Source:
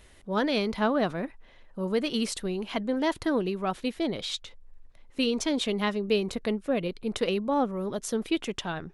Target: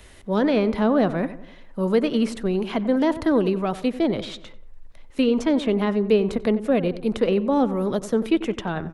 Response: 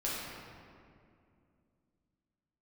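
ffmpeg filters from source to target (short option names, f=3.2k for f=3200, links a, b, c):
-filter_complex "[0:a]acrossover=split=120|610|2100[a][b][c][d];[c]alimiter=level_in=6dB:limit=-24dB:level=0:latency=1,volume=-6dB[e];[d]acompressor=threshold=-48dB:ratio=6[f];[a][b][e][f]amix=inputs=4:normalize=0,asplit=2[g][h];[h]adelay=92,lowpass=f=1.7k:p=1,volume=-13.5dB,asplit=2[i][j];[j]adelay=92,lowpass=f=1.7k:p=1,volume=0.49,asplit=2[k][l];[l]adelay=92,lowpass=f=1.7k:p=1,volume=0.49,asplit=2[m][n];[n]adelay=92,lowpass=f=1.7k:p=1,volume=0.49,asplit=2[o][p];[p]adelay=92,lowpass=f=1.7k:p=1,volume=0.49[q];[g][i][k][m][o][q]amix=inputs=6:normalize=0,volume=7.5dB"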